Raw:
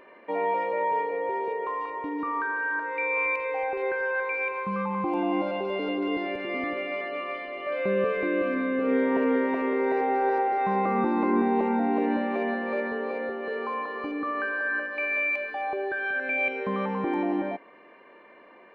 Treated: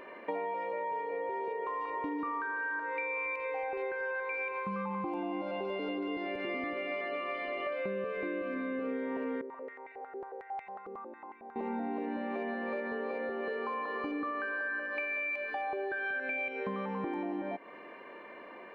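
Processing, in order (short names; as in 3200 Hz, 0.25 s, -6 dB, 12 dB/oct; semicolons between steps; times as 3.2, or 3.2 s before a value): compressor 12:1, threshold -36 dBFS, peak gain reduction 17 dB; 9.41–11.56 stepped band-pass 11 Hz 400–2300 Hz; gain +3.5 dB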